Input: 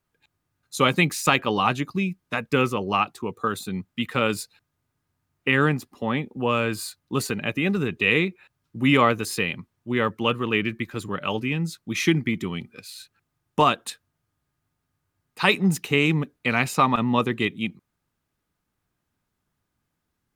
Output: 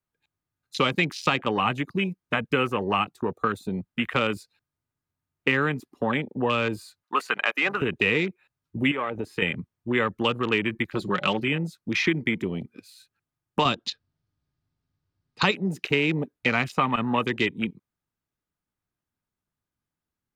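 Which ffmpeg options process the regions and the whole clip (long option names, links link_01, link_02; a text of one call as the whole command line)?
ffmpeg -i in.wav -filter_complex "[0:a]asettb=1/sr,asplit=3[link_01][link_02][link_03];[link_01]atrim=end=7.034[link_04];[link_02]atrim=start=7.03:end=7.82,asetpts=PTS-STARTPTS,afade=type=in:duration=0.004:curve=qsin,afade=type=out:start_time=0.786:duration=0.004:curve=qsin,highpass=690,equalizer=frequency=1200:width=0.78:gain=9.5[link_05];[link_03]atrim=start=7.816[link_06];[link_04][link_05]acrossfade=duration=0.004:curve1=hsin:curve2=qsin[link_07];[link_07][link_06]acrossfade=duration=0.004:curve1=qsin:curve2=hsin,asettb=1/sr,asplit=3[link_08][link_09][link_10];[link_08]atrim=end=8.914[link_11];[link_09]atrim=start=8.91:end=9.42,asetpts=PTS-STARTPTS,afade=type=in:duration=0.004:curve=qsin,afade=type=out:start_time=0.506:duration=0.004:curve=qsin,bass=frequency=250:gain=-5,treble=frequency=4000:gain=-13,acompressor=threshold=-27dB:ratio=6:attack=3.2:release=140:knee=1:detection=peak[link_12];[link_10]atrim=start=9.416[link_13];[link_11][link_12]acrossfade=duration=0.004:curve1=hsin:curve2=qsin[link_14];[link_14][link_13]acrossfade=duration=0.004:curve1=qsin:curve2=hsin,asettb=1/sr,asplit=3[link_15][link_16][link_17];[link_15]atrim=end=10.914[link_18];[link_16]atrim=start=10.91:end=11.48,asetpts=PTS-STARTPTS,afade=type=in:duration=0.004:curve=qsin,afade=type=out:start_time=0.566:duration=0.004:curve=qsin,equalizer=frequency=4200:width_type=o:width=0.6:gain=13.5,aecho=1:1:5.5:0.52,atrim=end_sample=25137[link_19];[link_17]atrim=start=11.476[link_20];[link_18][link_19]acrossfade=duration=0.004:curve1=hsin:curve2=qsin[link_21];[link_21][link_20]acrossfade=duration=0.004:curve1=qsin:curve2=hsin,asettb=1/sr,asplit=3[link_22][link_23][link_24];[link_22]atrim=end=13.654[link_25];[link_23]atrim=start=13.65:end=15.51,asetpts=PTS-STARTPTS,afade=type=in:duration=0.004:curve=qsin,afade=type=out:start_time=1.856:duration=0.004:curve=qsin,lowpass=frequency=4800:width_type=q:width=2.2,lowshelf=frequency=400:gain=10[link_26];[link_24]atrim=start=15.506[link_27];[link_25][link_26]acrossfade=duration=0.004:curve1=hsin:curve2=qsin[link_28];[link_28][link_27]acrossfade=duration=0.004:curve1=qsin:curve2=hsin,afwtdn=0.0224,acrossover=split=350|2000|6700[link_29][link_30][link_31][link_32];[link_29]acompressor=threshold=-36dB:ratio=4[link_33];[link_30]acompressor=threshold=-31dB:ratio=4[link_34];[link_31]acompressor=threshold=-34dB:ratio=4[link_35];[link_32]acompressor=threshold=-59dB:ratio=4[link_36];[link_33][link_34][link_35][link_36]amix=inputs=4:normalize=0,volume=6dB" out.wav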